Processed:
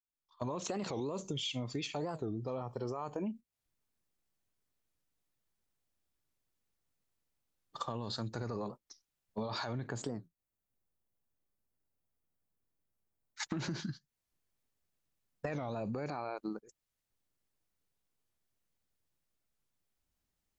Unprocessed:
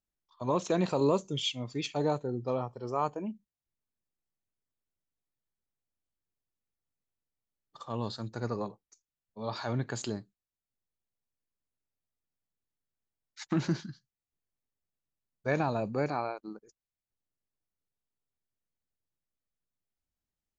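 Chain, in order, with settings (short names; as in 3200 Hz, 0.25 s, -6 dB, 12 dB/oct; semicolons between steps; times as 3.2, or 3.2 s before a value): opening faded in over 0.91 s; gate -47 dBFS, range -10 dB; 9.87–13.43 bell 4200 Hz -11.5 dB 2.6 oct; limiter -30.5 dBFS, peak gain reduction 14.5 dB; compressor 5:1, threshold -53 dBFS, peak gain reduction 16.5 dB; record warp 45 rpm, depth 250 cents; gain +16 dB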